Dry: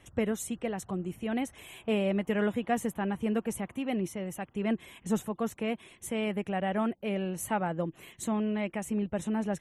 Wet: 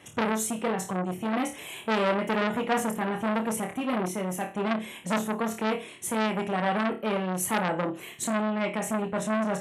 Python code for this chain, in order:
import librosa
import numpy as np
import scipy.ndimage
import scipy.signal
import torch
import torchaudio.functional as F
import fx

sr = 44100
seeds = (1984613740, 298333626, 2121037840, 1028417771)

y = scipy.signal.sosfilt(scipy.signal.butter(2, 150.0, 'highpass', fs=sr, output='sos'), x)
y = fx.room_flutter(y, sr, wall_m=4.7, rt60_s=0.3)
y = fx.transformer_sat(y, sr, knee_hz=2100.0)
y = y * 10.0 ** (7.0 / 20.0)